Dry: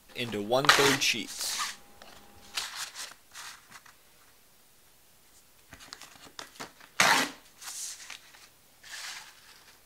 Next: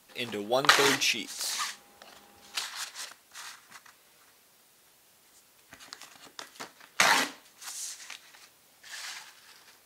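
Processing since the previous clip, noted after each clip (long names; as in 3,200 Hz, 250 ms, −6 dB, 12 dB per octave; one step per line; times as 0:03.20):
high-pass filter 220 Hz 6 dB per octave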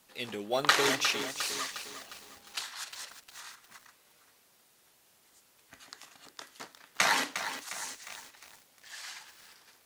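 feedback echo at a low word length 356 ms, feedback 55%, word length 7 bits, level −9 dB
level −3.5 dB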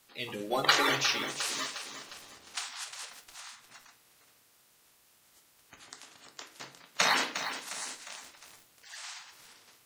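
spectral magnitudes quantised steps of 30 dB
convolution reverb RT60 0.50 s, pre-delay 7 ms, DRR 5 dB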